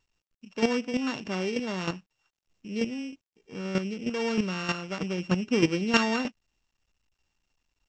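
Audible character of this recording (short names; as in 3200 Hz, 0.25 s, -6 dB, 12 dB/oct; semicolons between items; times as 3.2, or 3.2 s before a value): a buzz of ramps at a fixed pitch in blocks of 16 samples; chopped level 3.2 Hz, depth 65%, duty 10%; µ-law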